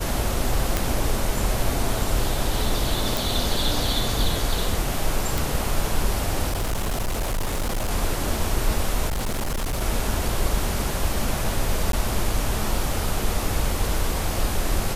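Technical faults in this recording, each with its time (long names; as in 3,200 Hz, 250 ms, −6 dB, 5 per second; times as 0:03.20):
0:00.77: click
0:03.17: click
0:05.38: click
0:06.49–0:07.91: clipping −21 dBFS
0:09.07–0:09.82: clipping −22 dBFS
0:11.92–0:11.93: drop-out 12 ms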